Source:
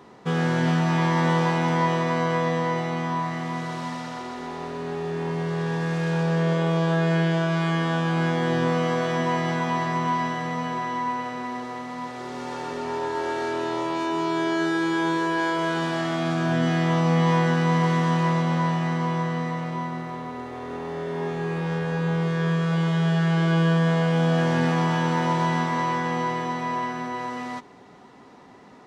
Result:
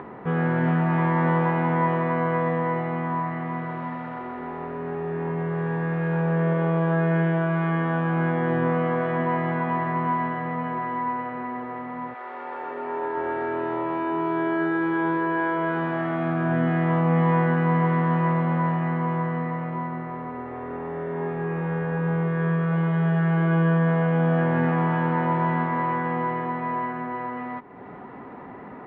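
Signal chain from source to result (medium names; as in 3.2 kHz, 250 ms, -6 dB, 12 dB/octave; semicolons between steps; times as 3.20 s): 12.13–13.15 s: high-pass 800 Hz -> 210 Hz 12 dB/octave; upward compressor, threshold -30 dBFS; low-pass 2.1 kHz 24 dB/octave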